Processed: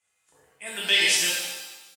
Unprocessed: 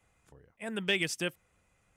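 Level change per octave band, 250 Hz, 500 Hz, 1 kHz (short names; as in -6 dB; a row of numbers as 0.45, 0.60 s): -5.0, -0.5, +6.0 dB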